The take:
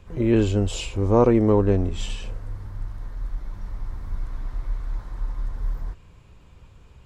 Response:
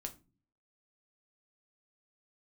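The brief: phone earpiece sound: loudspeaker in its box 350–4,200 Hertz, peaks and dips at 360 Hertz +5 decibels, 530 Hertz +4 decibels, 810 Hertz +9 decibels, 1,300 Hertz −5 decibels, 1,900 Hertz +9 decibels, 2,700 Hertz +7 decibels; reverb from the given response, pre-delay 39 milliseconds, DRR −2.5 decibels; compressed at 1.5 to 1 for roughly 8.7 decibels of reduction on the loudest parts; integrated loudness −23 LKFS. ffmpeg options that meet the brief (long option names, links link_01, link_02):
-filter_complex "[0:a]acompressor=threshold=-38dB:ratio=1.5,asplit=2[link_01][link_02];[1:a]atrim=start_sample=2205,adelay=39[link_03];[link_02][link_03]afir=irnorm=-1:irlink=0,volume=5.5dB[link_04];[link_01][link_04]amix=inputs=2:normalize=0,highpass=350,equalizer=frequency=360:width_type=q:width=4:gain=5,equalizer=frequency=530:width_type=q:width=4:gain=4,equalizer=frequency=810:width_type=q:width=4:gain=9,equalizer=frequency=1300:width_type=q:width=4:gain=-5,equalizer=frequency=1900:width_type=q:width=4:gain=9,equalizer=frequency=2700:width_type=q:width=4:gain=7,lowpass=frequency=4200:width=0.5412,lowpass=frequency=4200:width=1.3066,volume=1.5dB"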